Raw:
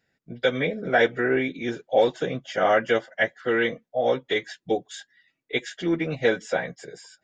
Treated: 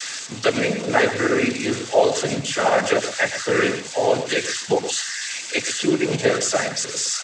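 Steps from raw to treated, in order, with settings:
spike at every zero crossing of −20 dBFS
in parallel at −0.5 dB: brickwall limiter −19 dBFS, peak gain reduction 11 dB
on the sum: cochlear-implant simulation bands 16
single-tap delay 118 ms −10.5 dB

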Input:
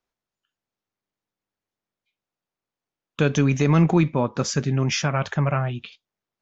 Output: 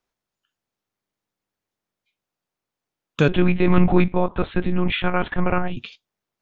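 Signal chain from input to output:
0:03.28–0:05.77: one-pitch LPC vocoder at 8 kHz 180 Hz
level +3 dB

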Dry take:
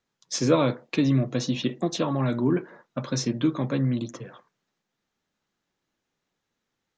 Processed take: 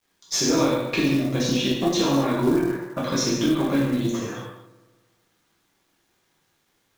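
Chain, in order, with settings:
mains-hum notches 60/120/180/240/300 Hz
downward compressor 5 to 1, threshold −27 dBFS, peak gain reduction 11.5 dB
on a send: delay with a low-pass on its return 74 ms, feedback 71%, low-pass 1,600 Hz, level −17 dB
on the sum: reverb whose tail is shaped and stops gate 310 ms falling, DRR −7 dB
in parallel at −6 dB: asymmetric clip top −35 dBFS
on the sum: log-companded quantiser 6 bits

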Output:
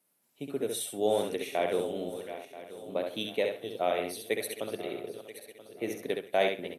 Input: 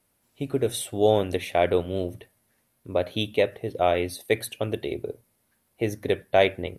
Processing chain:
feedback delay that plays each chunk backwards 491 ms, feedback 58%, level −12 dB
high-pass filter 160 Hz 24 dB per octave
high-shelf EQ 6,600 Hz +6 dB
repeating echo 67 ms, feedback 18%, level −5 dB
level −8 dB

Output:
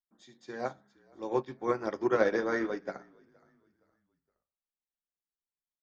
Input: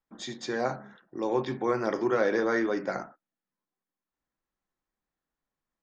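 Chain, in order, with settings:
echo with shifted repeats 467 ms, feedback 37%, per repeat −44 Hz, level −14.5 dB
expander for the loud parts 2.5 to 1, over −36 dBFS
level +1.5 dB

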